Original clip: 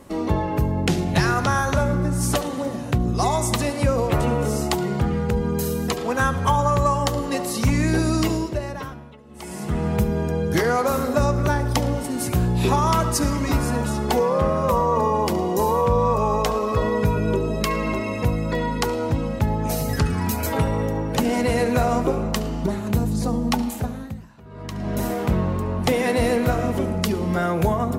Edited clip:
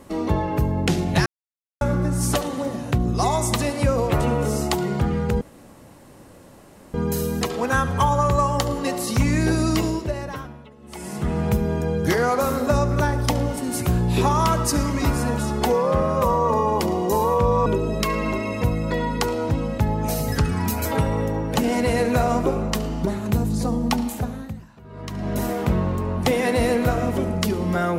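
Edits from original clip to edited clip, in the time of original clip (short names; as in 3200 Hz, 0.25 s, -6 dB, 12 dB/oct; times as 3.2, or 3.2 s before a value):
1.26–1.81 mute
5.41 insert room tone 1.53 s
16.13–17.27 cut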